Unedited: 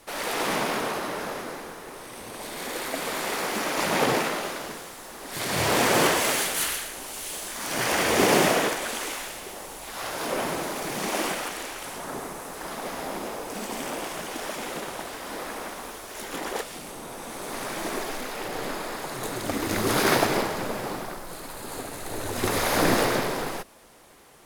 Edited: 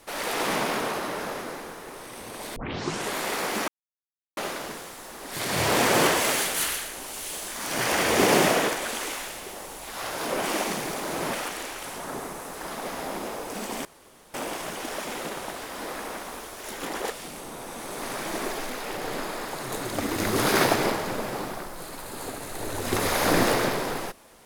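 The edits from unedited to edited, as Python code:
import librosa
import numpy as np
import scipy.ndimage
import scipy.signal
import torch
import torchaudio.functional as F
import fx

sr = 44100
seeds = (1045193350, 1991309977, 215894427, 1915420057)

y = fx.edit(x, sr, fx.tape_start(start_s=2.56, length_s=0.59),
    fx.silence(start_s=3.68, length_s=0.69),
    fx.reverse_span(start_s=10.43, length_s=0.9),
    fx.insert_room_tone(at_s=13.85, length_s=0.49), tone=tone)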